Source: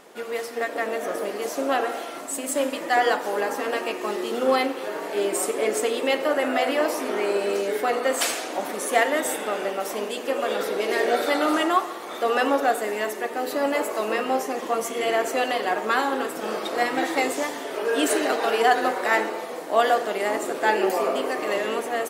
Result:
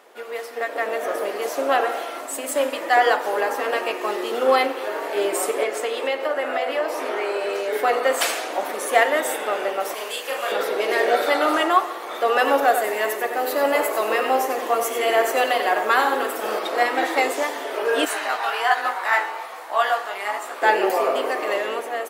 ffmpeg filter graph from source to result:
-filter_complex "[0:a]asettb=1/sr,asplit=3[a][b][c];[a]atrim=end=5.634[d];[b]atrim=start=5.63:end=7.73,asetpts=PTS-STARTPTS,afade=t=in:d=0.004:c=qsin,afade=t=out:st=2.096:d=0.004:c=qsin,highshelf=f=7.9k:g=-6,acrossover=split=260|550[e][f][g];[e]acompressor=threshold=-48dB:ratio=4[h];[f]acompressor=threshold=-32dB:ratio=4[i];[g]acompressor=threshold=-29dB:ratio=4[j];[h][i][j]amix=inputs=3:normalize=0,asplit=2[k][l];[l]adelay=22,volume=-13dB[m];[k][m]amix=inputs=2:normalize=0,atrim=end_sample=92610[n];[c]atrim=start=7.726[o];[d][n]acrossfade=d=0.004:c1=hsin:c2=qsin[p];[p][o]acrossfade=d=0.004:c1=qsin:c2=hsin,asettb=1/sr,asplit=3[q][r][s];[q]atrim=end=9.944[t];[r]atrim=start=9.94:end=10.52,asetpts=PTS-STARTPTS,afade=t=in:d=0.004:c=qsin,afade=t=out:st=0.576:d=0.004:c=qsin,highpass=f=1.3k:p=1,highshelf=f=6k:g=5.5,asplit=2[u][v];[v]adelay=37,volume=-3dB[w];[u][w]amix=inputs=2:normalize=0,atrim=end_sample=25578[x];[s]atrim=start=10.516[y];[t][x]acrossfade=d=0.004:c1=hsin:c2=qsin[z];[z][y]acrossfade=d=0.004:c1=qsin:c2=hsin,asettb=1/sr,asplit=3[aa][ab][ac];[aa]atrim=end=12.384[ad];[ab]atrim=start=12.38:end=16.59,asetpts=PTS-STARTPTS,afade=t=in:d=0.004:c=qsin,afade=t=out:st=4.206:d=0.004:c=qsin,highshelf=f=11k:g=9,aecho=1:1:93:0.355,atrim=end_sample=185661[ae];[ac]atrim=start=16.586[af];[ad][ae]acrossfade=d=0.004:c1=hsin:c2=qsin[ag];[ag][af]acrossfade=d=0.004:c1=qsin:c2=hsin,asettb=1/sr,asplit=3[ah][ai][aj];[ah]atrim=end=18.054[ak];[ai]atrim=start=18.05:end=20.62,asetpts=PTS-STARTPTS,afade=t=in:d=0.004:c=qsin,afade=t=out:st=2.566:d=0.004:c=qsin,lowshelf=f=660:t=q:w=1.5:g=-9.5,flanger=delay=15:depth=6.3:speed=1.2[al];[aj]atrim=start=20.616[am];[ak][al]acrossfade=d=0.004:c1=hsin:c2=qsin[an];[an][am]acrossfade=d=0.004:c1=qsin:c2=hsin,highpass=420,equalizer=f=7.3k:t=o:w=1.7:g=-5.5,dynaudnorm=f=220:g=7:m=5dB"

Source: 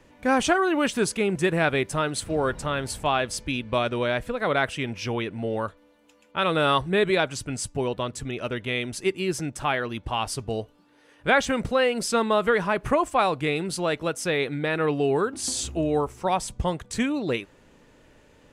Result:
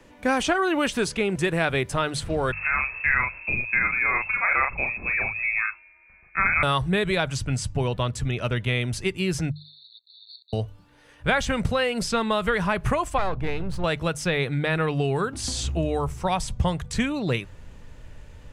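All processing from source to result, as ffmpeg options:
-filter_complex "[0:a]asettb=1/sr,asplit=3[a][b][c];[a]atrim=end=2.524[d];[b]atrim=start=2.52:end=6.63,asetpts=PTS-STARTPTS,afade=t=in:d=0.004:c=qsin,afade=t=out:st=4.106:d=0.004:c=qsin,asplit=2[e][f];[f]adelay=37,volume=-3.5dB[g];[e][g]amix=inputs=2:normalize=0,atrim=end_sample=181251,lowpass=f=2.3k:t=q:w=0.5098,lowpass=f=2.3k:t=q:w=0.6013,lowpass=f=2.3k:t=q:w=0.9,lowpass=f=2.3k:t=q:w=2.563,afreqshift=-2700[h];[c]atrim=start=6.626[i];[d][h]acrossfade=d=0.004:c1=hsin:c2=qsin[j];[j][i]acrossfade=d=0.004:c1=qsin:c2=hsin,asettb=1/sr,asplit=3[k][l][m];[k]atrim=end=9.514[n];[l]atrim=start=9.51:end=10.53,asetpts=PTS-STARTPTS,afade=t=in:d=0.004:c=qsin,afade=t=out:st=1.016:d=0.004:c=qsin,acompressor=threshold=-28dB:ratio=3:attack=3.2:release=140:knee=1:detection=peak,acrusher=bits=7:dc=4:mix=0:aa=0.000001,asuperpass=centerf=4000:order=20:qfactor=4.3[o];[m]atrim=start=10.526[p];[n][o]acrossfade=d=0.004:c1=hsin:c2=qsin[q];[q][p]acrossfade=d=0.004:c1=qsin:c2=hsin,asettb=1/sr,asplit=3[r][s][t];[r]atrim=end=13.184[u];[s]atrim=start=13.18:end=13.84,asetpts=PTS-STARTPTS,afade=t=in:d=0.004:c=qsin,afade=t=out:st=0.656:d=0.004:c=qsin,aeval=exprs='if(lt(val(0),0),0.251*val(0),val(0))':c=same,lowpass=f=1.3k:p=1,aeval=exprs='val(0)+0.00708*(sin(2*PI*60*n/s)+sin(2*PI*2*60*n/s)/2+sin(2*PI*3*60*n/s)/3+sin(2*PI*4*60*n/s)/4+sin(2*PI*5*60*n/s)/5)':c=same[v];[t]atrim=start=13.836[w];[u][v]acrossfade=d=0.004:c1=hsin:c2=qsin[x];[x][w]acrossfade=d=0.004:c1=qsin:c2=hsin,bandreject=f=50:t=h:w=6,bandreject=f=100:t=h:w=6,bandreject=f=150:t=h:w=6,acrossover=split=110|2000|5800[y][z][aa][ab];[y]acompressor=threshold=-51dB:ratio=4[ac];[z]acompressor=threshold=-23dB:ratio=4[ad];[aa]acompressor=threshold=-32dB:ratio=4[ae];[ab]acompressor=threshold=-43dB:ratio=4[af];[ac][ad][ae][af]amix=inputs=4:normalize=0,asubboost=boost=8.5:cutoff=100,volume=3.5dB"

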